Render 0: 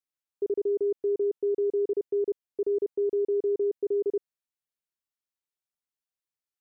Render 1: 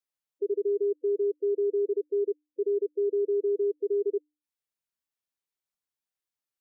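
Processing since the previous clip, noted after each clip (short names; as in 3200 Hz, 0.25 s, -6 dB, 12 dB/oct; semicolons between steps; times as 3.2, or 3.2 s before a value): spectral gate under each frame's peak -20 dB strong; notches 50/100/150/200/250/300 Hz; spectral gate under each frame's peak -15 dB strong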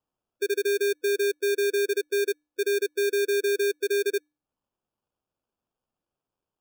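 sample-and-hold 22×; gain +2 dB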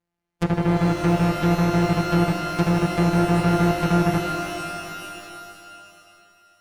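sample sorter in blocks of 256 samples; treble ducked by the level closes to 1300 Hz, closed at -22 dBFS; shimmer reverb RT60 2.5 s, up +12 st, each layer -2 dB, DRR 5.5 dB; gain +4.5 dB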